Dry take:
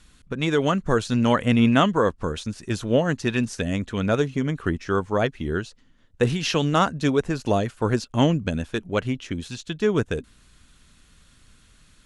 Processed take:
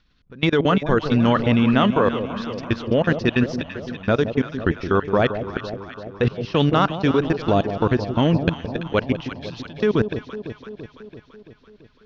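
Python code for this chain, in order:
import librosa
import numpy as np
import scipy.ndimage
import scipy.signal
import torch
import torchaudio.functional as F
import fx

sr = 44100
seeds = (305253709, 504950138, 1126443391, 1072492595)

y = scipy.signal.sosfilt(scipy.signal.butter(8, 5400.0, 'lowpass', fs=sr, output='sos'), x)
y = fx.level_steps(y, sr, step_db=23)
y = fx.echo_alternate(y, sr, ms=168, hz=860.0, feedback_pct=78, wet_db=-9.0)
y = y * librosa.db_to_amplitude(6.5)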